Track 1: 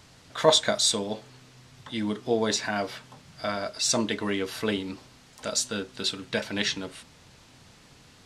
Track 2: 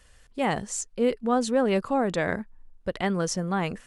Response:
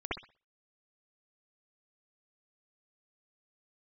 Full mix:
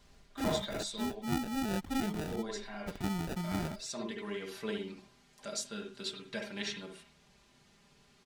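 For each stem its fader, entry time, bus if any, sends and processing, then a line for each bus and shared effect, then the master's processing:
−15.0 dB, 0.00 s, send −8 dB, comb filter 5 ms, depth 75%; automatic ducking −9 dB, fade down 0.20 s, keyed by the second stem
−5.5 dB, 0.00 s, no send, phaser with its sweep stopped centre 2,500 Hz, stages 8; decimation without filtering 41×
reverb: on, pre-delay 60 ms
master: no processing

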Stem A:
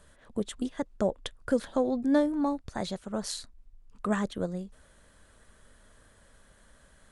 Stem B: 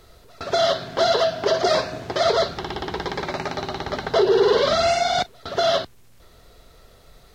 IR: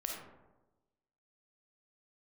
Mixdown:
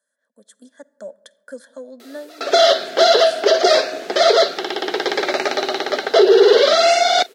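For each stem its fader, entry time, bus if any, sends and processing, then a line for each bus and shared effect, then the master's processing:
−14.5 dB, 0.00 s, send −19 dB, comb filter 1.2 ms, depth 66%; automatic gain control gain up to 3.5 dB; phaser with its sweep stopped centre 520 Hz, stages 8
+2.0 dB, 2.00 s, no send, no processing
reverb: on, RT60 1.1 s, pre-delay 10 ms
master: high-pass filter 330 Hz 24 dB per octave; parametric band 1,000 Hz −12.5 dB 0.41 octaves; automatic gain control gain up to 8.5 dB

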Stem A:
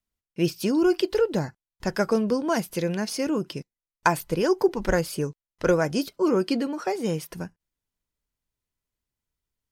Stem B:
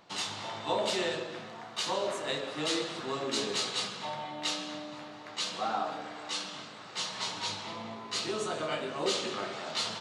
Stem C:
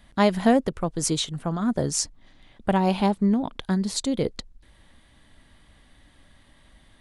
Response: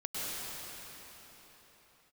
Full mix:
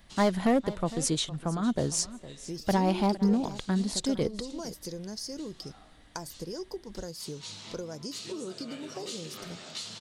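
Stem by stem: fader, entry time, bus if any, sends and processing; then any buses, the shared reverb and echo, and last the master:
−8.0 dB, 2.10 s, bus A, no send, no echo send, drawn EQ curve 440 Hz 0 dB, 2,700 Hz −13 dB, 4,800 Hz +10 dB, 13,000 Hz +1 dB
+0.5 dB, 0.00 s, bus A, no send, no echo send, drawn EQ curve 130 Hz 0 dB, 890 Hz −13 dB, 12,000 Hz +6 dB; automatic ducking −15 dB, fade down 0.35 s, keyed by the third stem
−3.5 dB, 0.00 s, no bus, no send, echo send −17 dB, hard clipping −14.5 dBFS, distortion −15 dB
bus A: 0.0 dB, downward compressor 6 to 1, threshold −35 dBFS, peak gain reduction 12 dB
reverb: not used
echo: single-tap delay 459 ms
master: no processing

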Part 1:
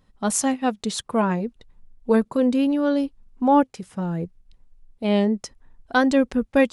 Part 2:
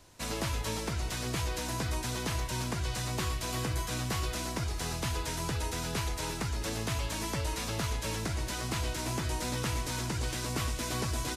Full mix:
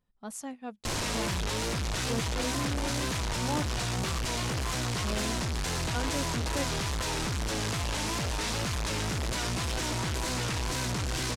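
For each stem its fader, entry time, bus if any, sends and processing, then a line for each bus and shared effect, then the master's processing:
−17.5 dB, 0.00 s, no send, no processing
+3.0 dB, 0.85 s, no send, sign of each sample alone; low-pass filter 8,100 Hz 12 dB per octave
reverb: not used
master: tape wow and flutter 75 cents

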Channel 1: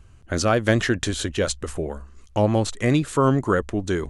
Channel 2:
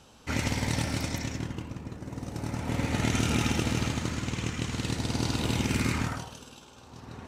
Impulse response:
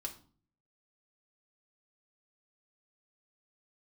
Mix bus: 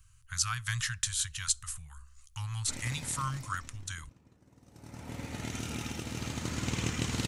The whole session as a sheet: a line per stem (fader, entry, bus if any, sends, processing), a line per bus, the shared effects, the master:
−12.0 dB, 0.00 s, send −15 dB, elliptic band-stop filter 130–1,100 Hz, stop band 40 dB; high-shelf EQ 5,000 Hz +11.5 dB
0:03.17 −15 dB → 0:03.75 −23 dB → 0:04.63 −23 dB → 0:05.01 −11.5 dB → 0:06.07 −11.5 dB → 0:06.68 −1 dB, 2.40 s, no send, no processing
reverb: on, RT60 0.45 s, pre-delay 3 ms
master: high-shelf EQ 5,800 Hz +6.5 dB

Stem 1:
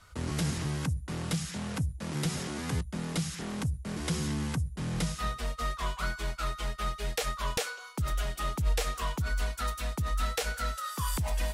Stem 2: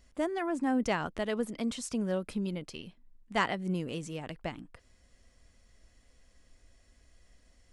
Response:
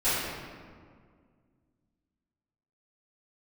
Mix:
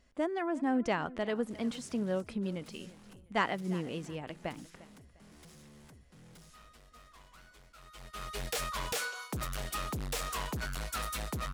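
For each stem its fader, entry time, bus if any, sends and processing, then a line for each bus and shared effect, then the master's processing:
+2.5 dB, 1.35 s, no send, no echo send, high-shelf EQ 9,200 Hz +4.5 dB; hard clipping −33.5 dBFS, distortion −8 dB; automatic ducking −21 dB, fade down 1.70 s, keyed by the second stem
−0.5 dB, 0.00 s, no send, echo send −19 dB, high-shelf EQ 5,800 Hz −10.5 dB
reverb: not used
echo: repeating echo 351 ms, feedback 31%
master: low-shelf EQ 81 Hz −8.5 dB

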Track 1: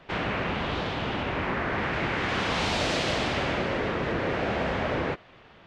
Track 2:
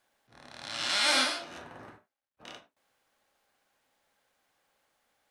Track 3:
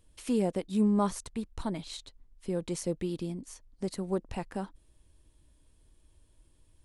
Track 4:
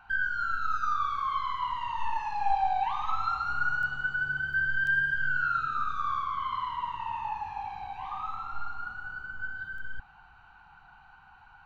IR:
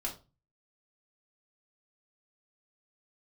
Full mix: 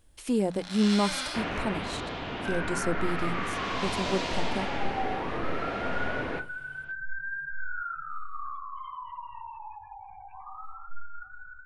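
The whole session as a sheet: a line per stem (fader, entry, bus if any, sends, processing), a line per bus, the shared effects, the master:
+3.0 dB, 1.25 s, send −16.5 dB, automatic ducking −12 dB, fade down 1.95 s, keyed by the third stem
−3.0 dB, 0.00 s, no send, brickwall limiter −20.5 dBFS, peak gain reduction 6.5 dB
+2.0 dB, 0.00 s, no send, no processing
−10.0 dB, 2.35 s, send −8 dB, gate on every frequency bin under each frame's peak −20 dB strong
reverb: on, RT60 0.30 s, pre-delay 3 ms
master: mains-hum notches 60/120/180 Hz

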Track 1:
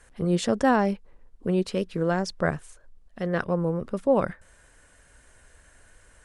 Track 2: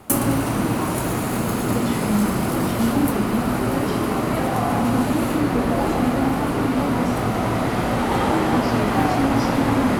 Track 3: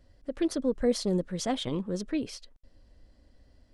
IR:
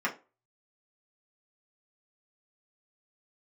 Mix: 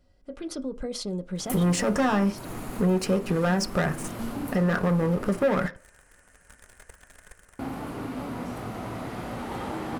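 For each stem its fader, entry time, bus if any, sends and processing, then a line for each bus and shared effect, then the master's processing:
−2.0 dB, 1.35 s, bus A, send −10.5 dB, parametric band 3,600 Hz −13.5 dB 0.4 octaves; leveller curve on the samples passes 3
−13.5 dB, 1.40 s, muted 0:05.67–0:07.59, no bus, no send, upward compression, threshold −27 dBFS
−3.5 dB, 0.00 s, bus A, send −11 dB, brickwall limiter −26 dBFS, peak gain reduction 11 dB; notch filter 1,800 Hz, Q 5.2
bus A: 0.0 dB, automatic gain control gain up to 5 dB; brickwall limiter −14 dBFS, peak gain reduction 7.5 dB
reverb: on, RT60 0.30 s, pre-delay 3 ms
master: downward compressor 2 to 1, threshold −26 dBFS, peak gain reduction 9 dB

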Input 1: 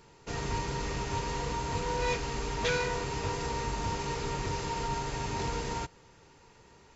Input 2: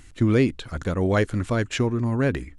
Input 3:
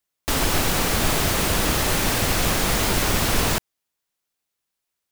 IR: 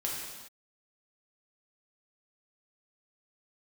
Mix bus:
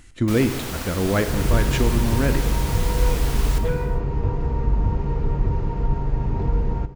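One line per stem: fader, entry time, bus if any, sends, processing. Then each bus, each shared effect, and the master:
+0.5 dB, 1.00 s, send −14 dB, low-pass filter 1,200 Hz 6 dB per octave; spectral tilt −3.5 dB per octave
−2.5 dB, 0.00 s, send −9 dB, no processing
−14.0 dB, 0.00 s, send −6.5 dB, no processing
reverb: on, pre-delay 3 ms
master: no processing

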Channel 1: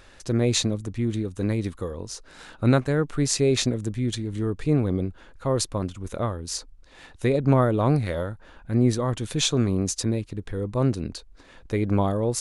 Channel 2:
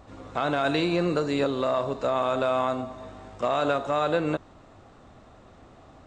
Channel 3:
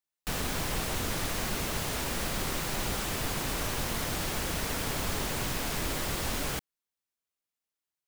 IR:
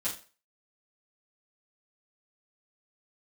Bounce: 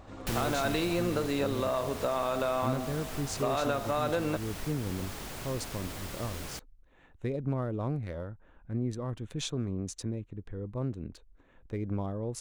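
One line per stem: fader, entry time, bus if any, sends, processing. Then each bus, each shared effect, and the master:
−12.5 dB, 0.00 s, no send, adaptive Wiener filter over 9 samples; low-shelf EQ 370 Hz +4.5 dB
−1.0 dB, 0.00 s, no send, no processing
+2.0 dB, 0.00 s, no send, automatic ducking −11 dB, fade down 1.50 s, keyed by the first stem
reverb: not used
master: downward compressor 2 to 1, threshold −29 dBFS, peak gain reduction 6 dB

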